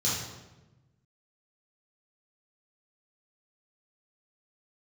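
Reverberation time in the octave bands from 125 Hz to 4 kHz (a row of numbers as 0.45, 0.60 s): 1.7, 1.5, 1.2, 1.0, 0.90, 0.80 s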